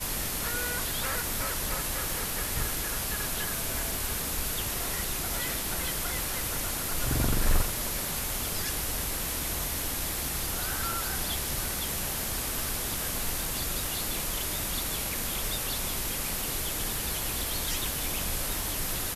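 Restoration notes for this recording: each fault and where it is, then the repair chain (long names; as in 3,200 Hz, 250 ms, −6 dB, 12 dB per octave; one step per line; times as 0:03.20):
surface crackle 24 per second −35 dBFS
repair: click removal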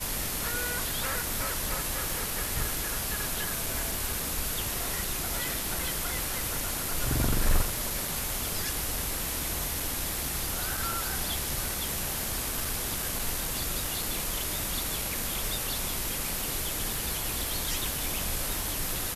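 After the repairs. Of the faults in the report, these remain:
none of them is left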